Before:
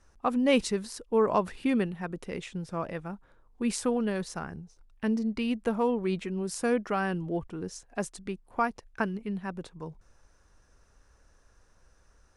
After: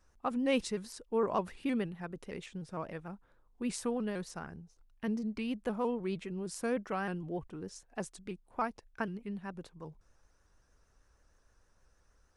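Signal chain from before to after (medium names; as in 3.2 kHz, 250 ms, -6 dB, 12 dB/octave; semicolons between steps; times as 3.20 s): vibrato with a chosen wave saw up 6.5 Hz, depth 100 cents; trim -6.5 dB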